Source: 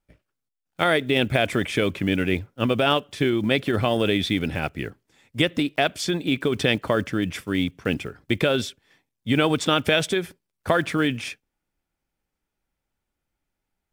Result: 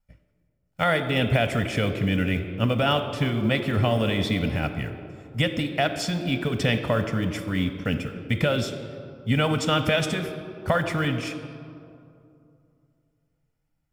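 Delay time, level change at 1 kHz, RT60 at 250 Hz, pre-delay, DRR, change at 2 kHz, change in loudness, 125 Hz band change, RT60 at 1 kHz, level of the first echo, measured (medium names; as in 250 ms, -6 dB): no echo, -1.0 dB, 2.9 s, 3 ms, 7.5 dB, -2.0 dB, -1.5 dB, +3.5 dB, 2.4 s, no echo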